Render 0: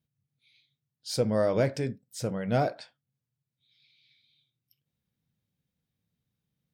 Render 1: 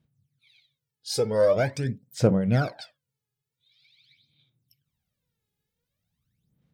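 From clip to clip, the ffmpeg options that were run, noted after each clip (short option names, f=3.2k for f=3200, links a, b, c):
-af "aphaser=in_gain=1:out_gain=1:delay=2.4:decay=0.75:speed=0.45:type=sinusoidal"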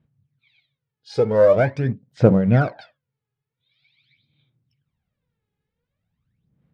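-filter_complex "[0:a]lowpass=2.3k,asplit=2[a][b];[b]aeval=exprs='sgn(val(0))*max(abs(val(0))-0.0141,0)':c=same,volume=-11dB[c];[a][c]amix=inputs=2:normalize=0,volume=4.5dB"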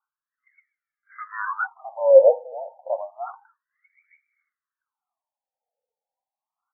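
-filter_complex "[0:a]highpass=f=320:t=q:w=0.5412,highpass=f=320:t=q:w=1.307,lowpass=f=3.1k:t=q:w=0.5176,lowpass=f=3.1k:t=q:w=0.7071,lowpass=f=3.1k:t=q:w=1.932,afreqshift=-57,acrossover=split=890[a][b];[a]adelay=660[c];[c][b]amix=inputs=2:normalize=0,afftfilt=real='re*between(b*sr/1024,640*pow(1700/640,0.5+0.5*sin(2*PI*0.3*pts/sr))/1.41,640*pow(1700/640,0.5+0.5*sin(2*PI*0.3*pts/sr))*1.41)':imag='im*between(b*sr/1024,640*pow(1700/640,0.5+0.5*sin(2*PI*0.3*pts/sr))/1.41,640*pow(1700/640,0.5+0.5*sin(2*PI*0.3*pts/sr))*1.41)':win_size=1024:overlap=0.75,volume=6.5dB"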